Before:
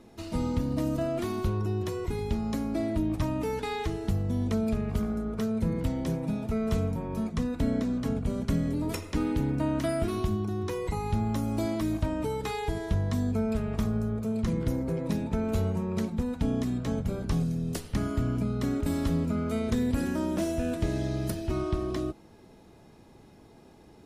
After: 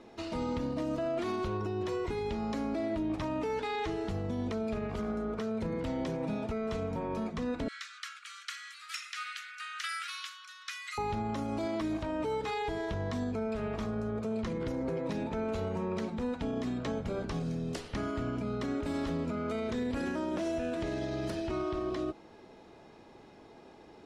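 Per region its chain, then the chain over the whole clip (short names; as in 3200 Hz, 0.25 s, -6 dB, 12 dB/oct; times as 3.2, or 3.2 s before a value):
7.68–10.98 self-modulated delay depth 0.061 ms + steep high-pass 1200 Hz 96 dB/oct + tilt +2.5 dB/oct
whole clip: LPF 6000 Hz 12 dB/oct; tone controls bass -11 dB, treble -3 dB; limiter -29.5 dBFS; gain +3.5 dB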